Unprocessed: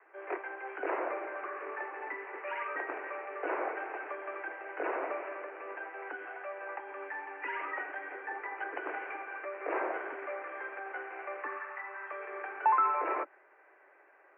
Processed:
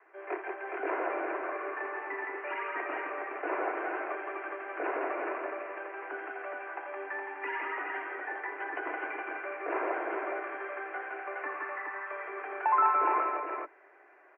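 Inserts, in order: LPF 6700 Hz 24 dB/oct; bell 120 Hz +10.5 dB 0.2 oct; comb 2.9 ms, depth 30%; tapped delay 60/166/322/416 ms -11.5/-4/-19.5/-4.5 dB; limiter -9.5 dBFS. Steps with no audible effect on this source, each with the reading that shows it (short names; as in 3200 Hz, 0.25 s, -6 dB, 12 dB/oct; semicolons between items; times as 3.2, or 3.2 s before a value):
LPF 6700 Hz: input band ends at 2900 Hz; bell 120 Hz: input band starts at 250 Hz; limiter -9.5 dBFS: input peak -14.5 dBFS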